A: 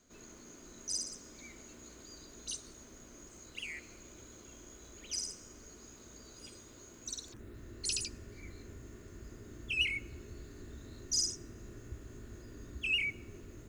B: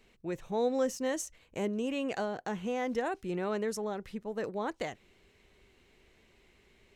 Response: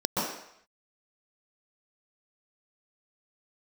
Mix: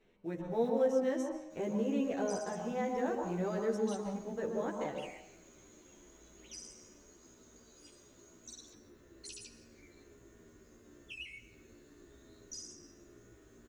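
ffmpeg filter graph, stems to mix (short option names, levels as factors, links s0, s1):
-filter_complex "[0:a]acrossover=split=270|2800[s0][s1][s2];[s0]acompressor=threshold=0.00178:ratio=4[s3];[s1]acompressor=threshold=0.00398:ratio=4[s4];[s2]acompressor=threshold=0.00891:ratio=4[s5];[s3][s4][s5]amix=inputs=3:normalize=0,adelay=1400,volume=0.596,asplit=2[s6][s7];[s7]volume=0.119[s8];[1:a]acrusher=bits=6:mode=log:mix=0:aa=0.000001,lowpass=f=1900:p=1,bandreject=f=106.7:t=h:w=4,bandreject=f=213.4:t=h:w=4,bandreject=f=320.1:t=h:w=4,bandreject=f=426.8:t=h:w=4,bandreject=f=533.5:t=h:w=4,bandreject=f=640.2:t=h:w=4,bandreject=f=746.9:t=h:w=4,bandreject=f=853.6:t=h:w=4,bandreject=f=960.3:t=h:w=4,bandreject=f=1067:t=h:w=4,bandreject=f=1173.7:t=h:w=4,bandreject=f=1280.4:t=h:w=4,bandreject=f=1387.1:t=h:w=4,bandreject=f=1493.8:t=h:w=4,bandreject=f=1600.5:t=h:w=4,bandreject=f=1707.2:t=h:w=4,bandreject=f=1813.9:t=h:w=4,bandreject=f=1920.6:t=h:w=4,bandreject=f=2027.3:t=h:w=4,bandreject=f=2134:t=h:w=4,bandreject=f=2240.7:t=h:w=4,bandreject=f=2347.4:t=h:w=4,bandreject=f=2454.1:t=h:w=4,bandreject=f=2560.8:t=h:w=4,bandreject=f=2667.5:t=h:w=4,bandreject=f=2774.2:t=h:w=4,bandreject=f=2880.9:t=h:w=4,bandreject=f=2987.6:t=h:w=4,bandreject=f=3094.3:t=h:w=4,bandreject=f=3201:t=h:w=4,bandreject=f=3307.7:t=h:w=4,volume=0.794,asplit=2[s9][s10];[s10]volume=0.2[s11];[2:a]atrim=start_sample=2205[s12];[s8][s11]amix=inputs=2:normalize=0[s13];[s13][s12]afir=irnorm=-1:irlink=0[s14];[s6][s9][s14]amix=inputs=3:normalize=0,asplit=2[s15][s16];[s16]adelay=11.6,afreqshift=-1[s17];[s15][s17]amix=inputs=2:normalize=1"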